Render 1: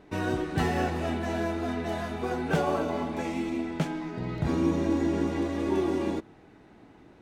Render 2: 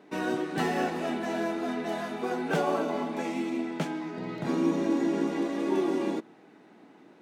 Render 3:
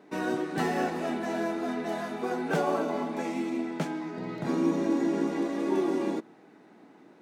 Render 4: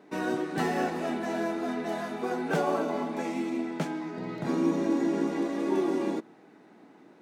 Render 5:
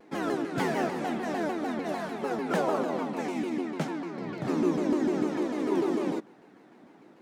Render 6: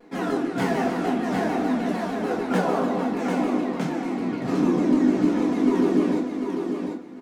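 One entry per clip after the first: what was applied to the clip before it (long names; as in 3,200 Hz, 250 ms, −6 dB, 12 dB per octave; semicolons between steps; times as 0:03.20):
high-pass filter 180 Hz 24 dB per octave
parametric band 3,000 Hz −3.5 dB 0.69 octaves
no processing that can be heard
pitch modulation by a square or saw wave saw down 6.7 Hz, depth 250 cents
on a send: repeating echo 745 ms, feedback 20%, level −5.5 dB; on the sum: rectangular room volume 210 cubic metres, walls furnished, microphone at 1.8 metres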